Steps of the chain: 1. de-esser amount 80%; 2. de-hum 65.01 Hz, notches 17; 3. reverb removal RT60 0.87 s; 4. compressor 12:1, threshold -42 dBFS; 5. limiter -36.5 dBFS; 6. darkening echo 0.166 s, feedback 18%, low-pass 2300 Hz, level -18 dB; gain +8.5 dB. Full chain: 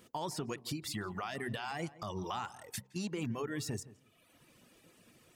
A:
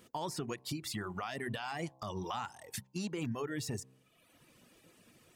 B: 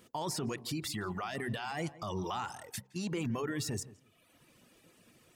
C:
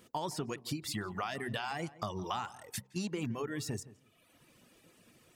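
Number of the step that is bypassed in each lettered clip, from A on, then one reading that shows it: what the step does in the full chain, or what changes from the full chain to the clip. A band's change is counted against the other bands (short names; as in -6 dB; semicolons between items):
6, echo-to-direct -19.5 dB to none; 4, mean gain reduction 9.5 dB; 5, crest factor change +6.0 dB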